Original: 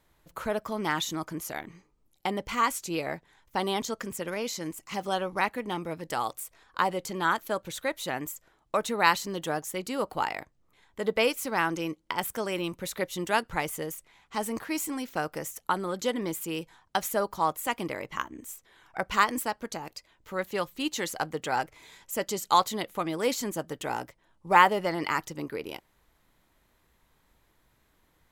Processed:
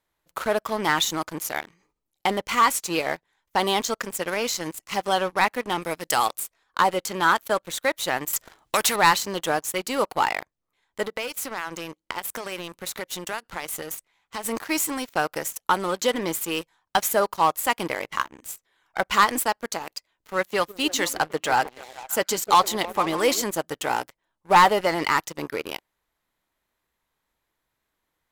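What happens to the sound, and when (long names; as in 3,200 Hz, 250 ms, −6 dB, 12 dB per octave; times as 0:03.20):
0:01.63–0:02.40: level that may fall only so fast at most 80 dB per second
0:05.82–0:06.27: high-shelf EQ 3,400 Hz +9.5 dB
0:08.33–0:08.96: every bin compressed towards the loudest bin 2 to 1
0:11.03–0:14.45: downward compressor, threshold −33 dBFS
0:20.44–0:23.42: echo through a band-pass that steps 151 ms, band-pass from 300 Hz, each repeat 0.7 octaves, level −8 dB
whole clip: low-shelf EQ 310 Hz −9 dB; leveller curve on the samples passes 3; level −2.5 dB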